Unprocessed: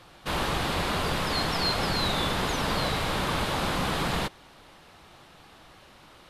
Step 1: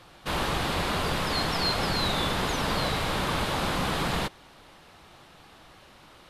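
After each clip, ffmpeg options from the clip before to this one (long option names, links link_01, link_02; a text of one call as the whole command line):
ffmpeg -i in.wav -af anull out.wav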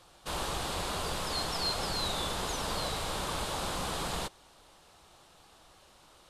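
ffmpeg -i in.wav -af "equalizer=frequency=125:width_type=o:width=1:gain=-5,equalizer=frequency=250:width_type=o:width=1:gain=-5,equalizer=frequency=2000:width_type=o:width=1:gain=-6,equalizer=frequency=8000:width_type=o:width=1:gain=7,volume=-5dB" out.wav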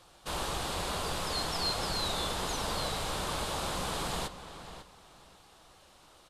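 ffmpeg -i in.wav -filter_complex "[0:a]asplit=2[link_01][link_02];[link_02]adelay=547,lowpass=frequency=4800:poles=1,volume=-11.5dB,asplit=2[link_03][link_04];[link_04]adelay=547,lowpass=frequency=4800:poles=1,volume=0.23,asplit=2[link_05][link_06];[link_06]adelay=547,lowpass=frequency=4800:poles=1,volume=0.23[link_07];[link_01][link_03][link_05][link_07]amix=inputs=4:normalize=0" out.wav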